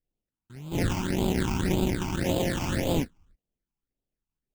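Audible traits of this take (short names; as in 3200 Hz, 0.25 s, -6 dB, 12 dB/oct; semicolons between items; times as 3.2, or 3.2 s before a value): aliases and images of a low sample rate 1200 Hz, jitter 20%; phasing stages 8, 1.8 Hz, lowest notch 510–1800 Hz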